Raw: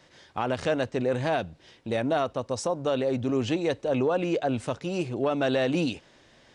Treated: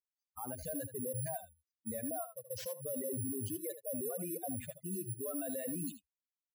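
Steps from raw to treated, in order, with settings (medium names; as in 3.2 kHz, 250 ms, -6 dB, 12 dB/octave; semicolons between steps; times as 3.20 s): expander on every frequency bin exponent 3; reverb removal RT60 1.4 s; high-pass 56 Hz 12 dB/octave; high-order bell 1.8 kHz -10.5 dB 2.4 oct; careless resampling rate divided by 4×, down none, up zero stuff; spectral noise reduction 22 dB; peak limiter -30.5 dBFS, peak gain reduction 20.5 dB; treble shelf 3.4 kHz -9.5 dB; short-mantissa float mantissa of 6-bit; on a send: delay 77 ms -12 dB; on the sum: trim +7 dB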